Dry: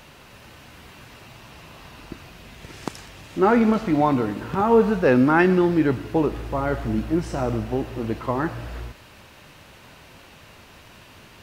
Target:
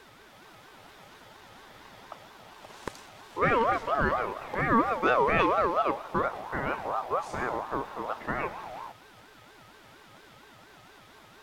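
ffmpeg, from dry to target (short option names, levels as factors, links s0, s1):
-af "aeval=exprs='val(0)+0.00398*sin(2*PI*570*n/s)':c=same,aeval=exprs='val(0)*sin(2*PI*840*n/s+840*0.2/4.3*sin(2*PI*4.3*n/s))':c=same,volume=0.596"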